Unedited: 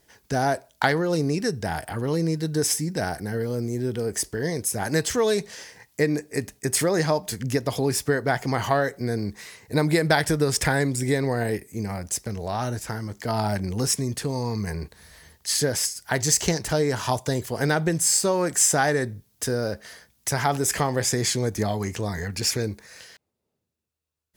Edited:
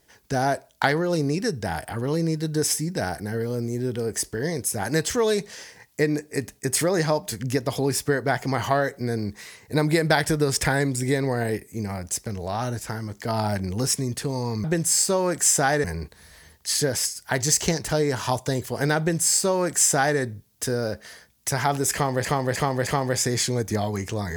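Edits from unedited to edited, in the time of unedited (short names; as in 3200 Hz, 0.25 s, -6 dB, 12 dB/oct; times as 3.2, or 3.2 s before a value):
17.79–18.99 copy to 14.64
20.74–21.05 loop, 4 plays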